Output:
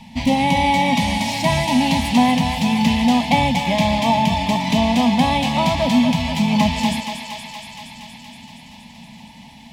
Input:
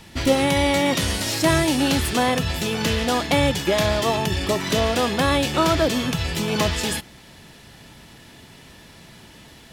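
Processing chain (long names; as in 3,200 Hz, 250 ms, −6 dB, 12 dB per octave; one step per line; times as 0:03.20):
drawn EQ curve 120 Hz 0 dB, 240 Hz +14 dB, 350 Hz −19 dB, 890 Hz +11 dB, 1,400 Hz −19 dB, 2,100 Hz +4 dB, 11,000 Hz −7 dB
on a send: feedback echo with a high-pass in the loop 235 ms, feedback 77%, high-pass 470 Hz, level −6.5 dB
on the sum: level −1 dB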